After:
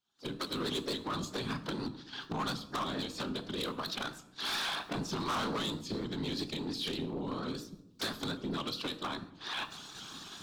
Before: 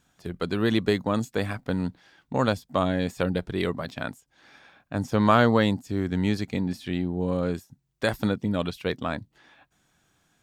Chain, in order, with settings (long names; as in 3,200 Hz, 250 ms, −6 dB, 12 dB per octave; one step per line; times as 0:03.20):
camcorder AGC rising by 60 dB per second
noise gate −37 dBFS, range −14 dB
drawn EQ curve 110 Hz 0 dB, 200 Hz −17 dB, 330 Hz −8 dB, 530 Hz −20 dB, 1,100 Hz −4 dB, 2,000 Hz −16 dB, 4,100 Hz +12 dB, 10,000 Hz +4 dB
pitch-shifted copies added +5 semitones −17 dB
random phases in short frames
three-way crossover with the lows and the highs turned down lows −21 dB, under 200 Hz, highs −19 dB, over 3,100 Hz
hard clipping −31.5 dBFS, distortion −9 dB
on a send at −9 dB: convolution reverb RT60 0.85 s, pre-delay 5 ms
on the sum: pitch modulation by a square or saw wave saw up 4.3 Hz, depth 100 cents